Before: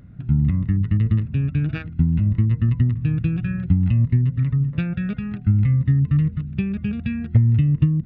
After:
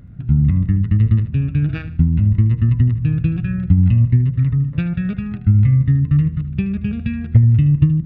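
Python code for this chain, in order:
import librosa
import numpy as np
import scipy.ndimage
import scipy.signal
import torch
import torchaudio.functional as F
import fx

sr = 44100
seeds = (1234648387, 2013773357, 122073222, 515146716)

p1 = fx.low_shelf(x, sr, hz=120.0, db=6.0)
p2 = p1 + fx.echo_feedback(p1, sr, ms=76, feedback_pct=32, wet_db=-14.0, dry=0)
y = p2 * 10.0 ** (1.0 / 20.0)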